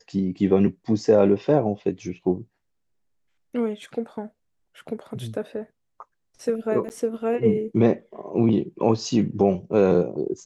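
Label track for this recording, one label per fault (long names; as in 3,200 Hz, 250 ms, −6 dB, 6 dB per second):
6.890000	6.900000	drop-out 9.5 ms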